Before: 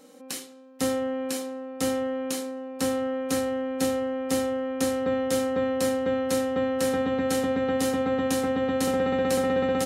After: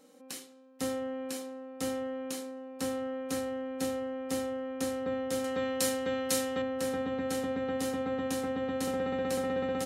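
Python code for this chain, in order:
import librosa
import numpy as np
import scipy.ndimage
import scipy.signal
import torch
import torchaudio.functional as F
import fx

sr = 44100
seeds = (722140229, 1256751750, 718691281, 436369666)

y = fx.high_shelf(x, sr, hz=2000.0, db=11.5, at=(5.44, 6.62))
y = F.gain(torch.from_numpy(y), -7.5).numpy()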